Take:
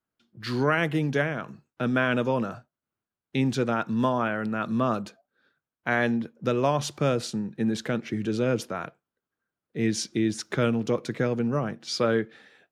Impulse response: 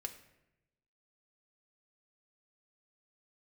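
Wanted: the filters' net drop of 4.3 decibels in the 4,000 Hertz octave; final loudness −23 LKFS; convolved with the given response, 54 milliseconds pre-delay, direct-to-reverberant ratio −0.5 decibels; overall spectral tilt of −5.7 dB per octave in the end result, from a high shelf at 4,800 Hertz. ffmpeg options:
-filter_complex "[0:a]equalizer=frequency=4000:width_type=o:gain=-7.5,highshelf=frequency=4800:gain=3,asplit=2[link_01][link_02];[1:a]atrim=start_sample=2205,adelay=54[link_03];[link_02][link_03]afir=irnorm=-1:irlink=0,volume=3dB[link_04];[link_01][link_04]amix=inputs=2:normalize=0,volume=1dB"

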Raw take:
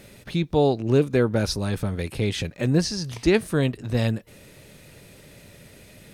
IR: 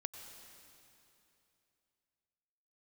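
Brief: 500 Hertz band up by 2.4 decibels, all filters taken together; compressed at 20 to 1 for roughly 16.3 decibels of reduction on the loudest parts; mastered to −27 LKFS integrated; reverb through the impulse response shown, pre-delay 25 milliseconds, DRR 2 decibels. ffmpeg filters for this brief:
-filter_complex "[0:a]equalizer=frequency=500:width_type=o:gain=3,acompressor=threshold=-29dB:ratio=20,asplit=2[link_01][link_02];[1:a]atrim=start_sample=2205,adelay=25[link_03];[link_02][link_03]afir=irnorm=-1:irlink=0,volume=0dB[link_04];[link_01][link_04]amix=inputs=2:normalize=0,volume=6dB"

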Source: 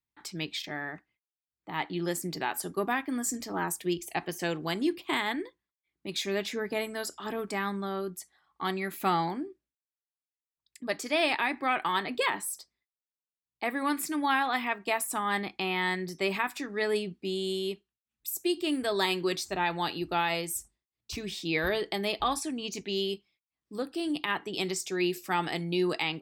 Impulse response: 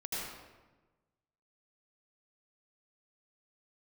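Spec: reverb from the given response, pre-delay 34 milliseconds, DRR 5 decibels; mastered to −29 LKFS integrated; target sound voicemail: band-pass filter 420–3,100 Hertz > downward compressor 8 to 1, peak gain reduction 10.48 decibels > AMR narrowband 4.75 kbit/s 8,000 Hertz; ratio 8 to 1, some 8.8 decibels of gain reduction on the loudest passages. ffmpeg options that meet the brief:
-filter_complex "[0:a]acompressor=threshold=-32dB:ratio=8,asplit=2[link_01][link_02];[1:a]atrim=start_sample=2205,adelay=34[link_03];[link_02][link_03]afir=irnorm=-1:irlink=0,volume=-8dB[link_04];[link_01][link_04]amix=inputs=2:normalize=0,highpass=420,lowpass=3100,acompressor=threshold=-41dB:ratio=8,volume=19dB" -ar 8000 -c:a libopencore_amrnb -b:a 4750

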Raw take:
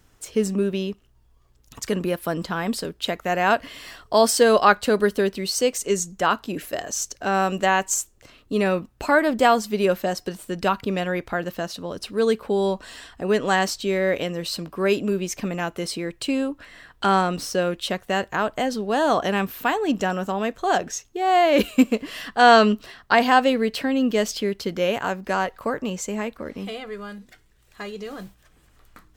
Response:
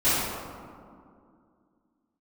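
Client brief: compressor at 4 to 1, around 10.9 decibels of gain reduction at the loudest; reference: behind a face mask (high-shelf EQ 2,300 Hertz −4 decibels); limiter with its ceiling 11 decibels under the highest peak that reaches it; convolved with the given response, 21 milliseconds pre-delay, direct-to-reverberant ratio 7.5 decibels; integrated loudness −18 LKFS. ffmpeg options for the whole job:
-filter_complex "[0:a]acompressor=threshold=-23dB:ratio=4,alimiter=limit=-21.5dB:level=0:latency=1,asplit=2[link_01][link_02];[1:a]atrim=start_sample=2205,adelay=21[link_03];[link_02][link_03]afir=irnorm=-1:irlink=0,volume=-24dB[link_04];[link_01][link_04]amix=inputs=2:normalize=0,highshelf=frequency=2300:gain=-4,volume=13dB"

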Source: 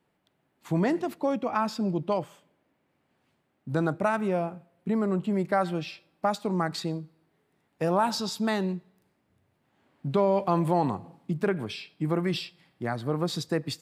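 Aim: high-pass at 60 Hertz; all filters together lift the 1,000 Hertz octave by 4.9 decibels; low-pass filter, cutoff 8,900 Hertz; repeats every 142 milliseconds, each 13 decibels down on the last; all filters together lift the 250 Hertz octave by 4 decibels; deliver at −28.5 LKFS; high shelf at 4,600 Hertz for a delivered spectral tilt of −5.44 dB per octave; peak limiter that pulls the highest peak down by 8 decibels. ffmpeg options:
ffmpeg -i in.wav -af "highpass=60,lowpass=8900,equalizer=frequency=250:width_type=o:gain=5.5,equalizer=frequency=1000:width_type=o:gain=5.5,highshelf=frequency=4600:gain=7.5,alimiter=limit=-16.5dB:level=0:latency=1,aecho=1:1:142|284|426:0.224|0.0493|0.0108,volume=-1dB" out.wav

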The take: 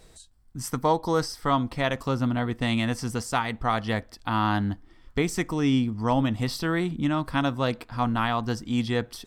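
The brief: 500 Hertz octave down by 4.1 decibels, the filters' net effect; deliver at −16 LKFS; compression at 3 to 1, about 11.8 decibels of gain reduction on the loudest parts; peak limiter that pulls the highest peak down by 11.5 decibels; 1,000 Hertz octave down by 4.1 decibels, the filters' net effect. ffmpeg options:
ffmpeg -i in.wav -af "equalizer=frequency=500:width_type=o:gain=-4,equalizer=frequency=1000:width_type=o:gain=-4,acompressor=threshold=-37dB:ratio=3,volume=27.5dB,alimiter=limit=-6dB:level=0:latency=1" out.wav

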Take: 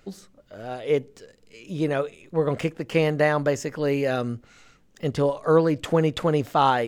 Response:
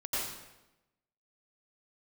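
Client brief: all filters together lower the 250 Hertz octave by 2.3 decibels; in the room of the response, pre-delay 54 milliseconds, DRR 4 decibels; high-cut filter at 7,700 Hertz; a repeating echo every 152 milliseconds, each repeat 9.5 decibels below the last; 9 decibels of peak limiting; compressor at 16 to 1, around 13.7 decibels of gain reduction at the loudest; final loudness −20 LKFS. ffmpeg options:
-filter_complex "[0:a]lowpass=7700,equalizer=frequency=250:width_type=o:gain=-3.5,acompressor=threshold=-28dB:ratio=16,alimiter=level_in=2.5dB:limit=-24dB:level=0:latency=1,volume=-2.5dB,aecho=1:1:152|304|456|608:0.335|0.111|0.0365|0.012,asplit=2[link_01][link_02];[1:a]atrim=start_sample=2205,adelay=54[link_03];[link_02][link_03]afir=irnorm=-1:irlink=0,volume=-9.5dB[link_04];[link_01][link_04]amix=inputs=2:normalize=0,volume=15.5dB"

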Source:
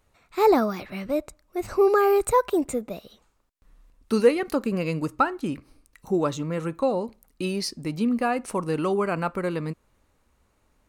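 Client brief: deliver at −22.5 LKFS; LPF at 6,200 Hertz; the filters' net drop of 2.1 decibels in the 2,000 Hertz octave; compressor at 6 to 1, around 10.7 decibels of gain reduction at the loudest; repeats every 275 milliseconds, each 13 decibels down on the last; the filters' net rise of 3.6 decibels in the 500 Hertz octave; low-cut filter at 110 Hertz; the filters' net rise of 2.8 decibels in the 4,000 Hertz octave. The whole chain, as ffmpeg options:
ffmpeg -i in.wav -af "highpass=110,lowpass=6200,equalizer=frequency=500:width_type=o:gain=4.5,equalizer=frequency=2000:width_type=o:gain=-4.5,equalizer=frequency=4000:width_type=o:gain=5.5,acompressor=threshold=-19dB:ratio=6,aecho=1:1:275|550|825:0.224|0.0493|0.0108,volume=4dB" out.wav

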